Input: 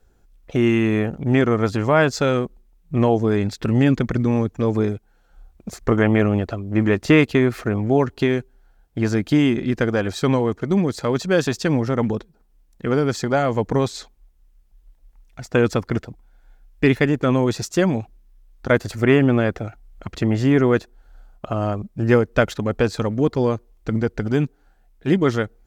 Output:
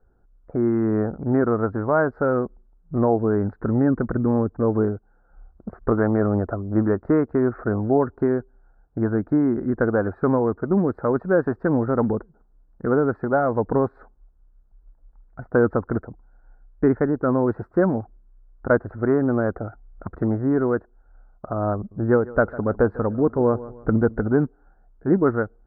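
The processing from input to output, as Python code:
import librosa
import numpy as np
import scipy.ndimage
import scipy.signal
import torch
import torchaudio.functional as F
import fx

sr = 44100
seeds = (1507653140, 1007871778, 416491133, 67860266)

y = fx.echo_feedback(x, sr, ms=151, feedback_pct=32, wet_db=-19.0, at=(21.76, 24.34))
y = scipy.signal.sosfilt(scipy.signal.ellip(4, 1.0, 50, 1500.0, 'lowpass', fs=sr, output='sos'), y)
y = fx.dynamic_eq(y, sr, hz=140.0, q=2.0, threshold_db=-36.0, ratio=4.0, max_db=-5)
y = fx.rider(y, sr, range_db=10, speed_s=0.5)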